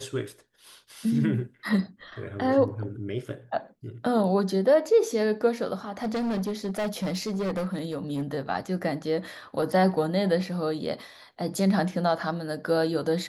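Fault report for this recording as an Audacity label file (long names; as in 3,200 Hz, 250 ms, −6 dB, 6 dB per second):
6.020000	8.230000	clipping −25 dBFS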